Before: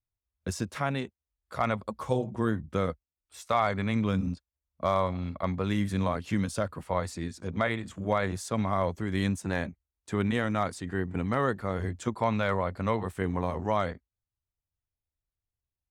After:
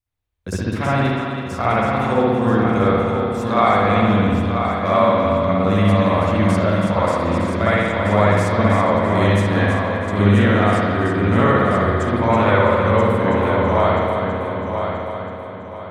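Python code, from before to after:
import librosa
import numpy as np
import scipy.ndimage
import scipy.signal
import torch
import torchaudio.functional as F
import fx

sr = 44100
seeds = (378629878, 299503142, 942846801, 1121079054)

y = fx.echo_heads(x, sr, ms=327, heads='first and third', feedback_pct=50, wet_db=-7.5)
y = fx.rev_spring(y, sr, rt60_s=1.5, pass_ms=(59,), chirp_ms=25, drr_db=-9.0)
y = y * librosa.db_to_amplitude(2.5)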